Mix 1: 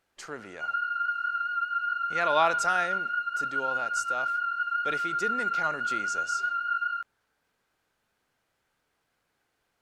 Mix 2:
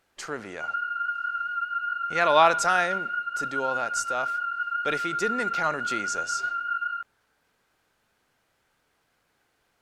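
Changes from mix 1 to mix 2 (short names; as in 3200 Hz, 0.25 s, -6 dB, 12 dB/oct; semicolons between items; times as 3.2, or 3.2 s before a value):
speech +5.5 dB; background: add LPF 3400 Hz 24 dB/oct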